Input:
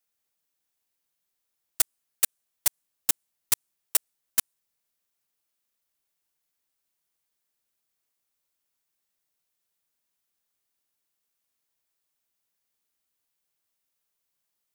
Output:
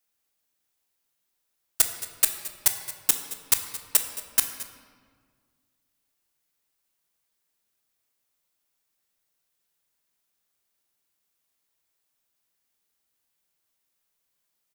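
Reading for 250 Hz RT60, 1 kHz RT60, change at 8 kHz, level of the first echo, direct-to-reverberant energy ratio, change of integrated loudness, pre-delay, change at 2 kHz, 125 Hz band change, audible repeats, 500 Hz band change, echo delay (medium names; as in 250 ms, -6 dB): 2.2 s, 1.7 s, +3.0 dB, -17.5 dB, 5.5 dB, +3.0 dB, 15 ms, +3.5 dB, +4.0 dB, 1, +3.5 dB, 219 ms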